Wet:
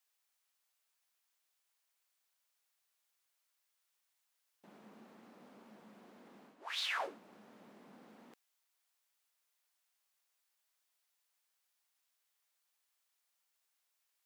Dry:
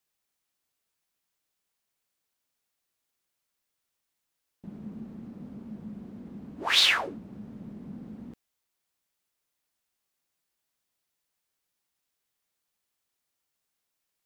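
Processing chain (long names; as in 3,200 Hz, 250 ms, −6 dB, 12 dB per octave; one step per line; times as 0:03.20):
high-pass filter 690 Hz 12 dB per octave
reversed playback
downward compressor 16 to 1, threshold −35 dBFS, peak gain reduction 19 dB
reversed playback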